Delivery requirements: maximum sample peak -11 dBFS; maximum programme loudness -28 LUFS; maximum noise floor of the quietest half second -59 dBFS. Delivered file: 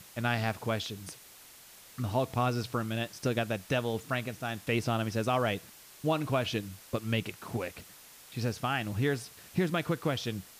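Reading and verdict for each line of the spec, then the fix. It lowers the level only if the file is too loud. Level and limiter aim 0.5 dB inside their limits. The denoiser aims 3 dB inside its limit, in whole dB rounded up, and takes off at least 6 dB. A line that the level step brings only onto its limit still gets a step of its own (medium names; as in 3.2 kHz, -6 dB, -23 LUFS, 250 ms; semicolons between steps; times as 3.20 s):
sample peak -16.5 dBFS: pass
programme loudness -32.5 LUFS: pass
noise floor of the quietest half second -53 dBFS: fail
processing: noise reduction 9 dB, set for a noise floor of -53 dBFS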